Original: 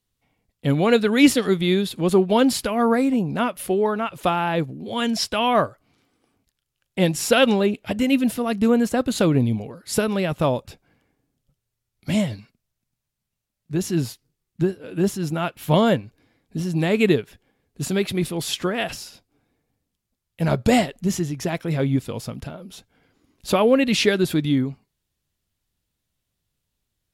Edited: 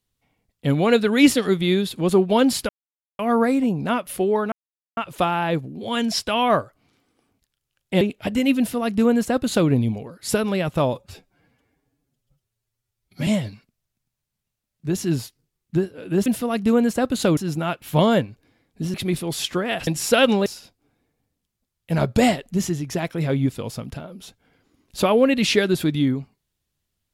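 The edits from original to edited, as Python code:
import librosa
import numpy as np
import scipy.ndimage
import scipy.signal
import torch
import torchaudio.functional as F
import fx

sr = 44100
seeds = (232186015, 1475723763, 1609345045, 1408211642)

y = fx.edit(x, sr, fx.insert_silence(at_s=2.69, length_s=0.5),
    fx.insert_silence(at_s=4.02, length_s=0.45),
    fx.move(start_s=7.06, length_s=0.59, to_s=18.96),
    fx.duplicate(start_s=8.22, length_s=1.11, to_s=15.12),
    fx.stretch_span(start_s=10.57, length_s=1.56, factor=1.5),
    fx.cut(start_s=16.69, length_s=1.34), tone=tone)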